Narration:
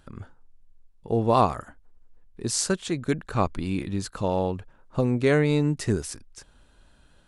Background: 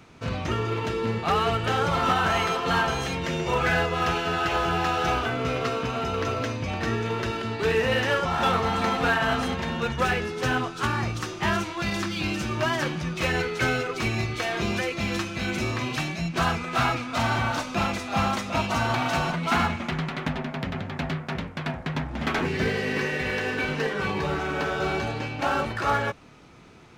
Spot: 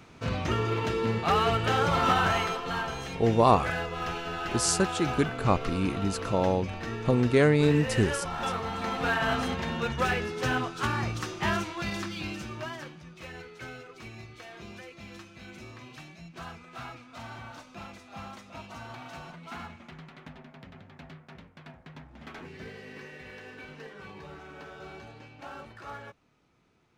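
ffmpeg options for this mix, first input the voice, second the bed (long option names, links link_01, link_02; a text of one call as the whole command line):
ffmpeg -i stem1.wav -i stem2.wav -filter_complex "[0:a]adelay=2100,volume=-0.5dB[link_01];[1:a]volume=4.5dB,afade=type=out:start_time=2.19:duration=0.47:silence=0.421697,afade=type=in:start_time=8.78:duration=0.49:silence=0.530884,afade=type=out:start_time=11.49:duration=1.48:silence=0.177828[link_02];[link_01][link_02]amix=inputs=2:normalize=0" out.wav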